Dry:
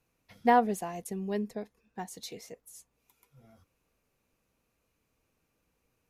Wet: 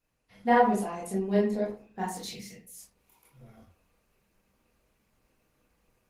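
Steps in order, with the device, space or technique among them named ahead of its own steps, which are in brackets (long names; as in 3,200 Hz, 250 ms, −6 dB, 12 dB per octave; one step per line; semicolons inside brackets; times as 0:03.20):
0:02.29–0:02.75: flat-topped bell 670 Hz −14.5 dB 2.6 octaves
speakerphone in a meeting room (convolution reverb RT60 0.45 s, pre-delay 20 ms, DRR −6.5 dB; automatic gain control gain up to 7 dB; level −6.5 dB; Opus 20 kbit/s 48,000 Hz)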